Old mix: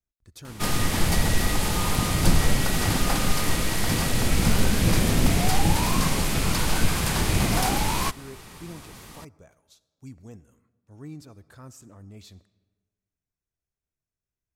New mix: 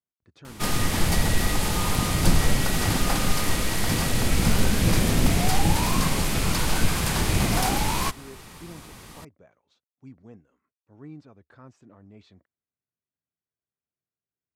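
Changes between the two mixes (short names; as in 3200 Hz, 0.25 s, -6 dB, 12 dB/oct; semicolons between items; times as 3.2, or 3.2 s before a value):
speech: add BPF 140–2600 Hz; reverb: off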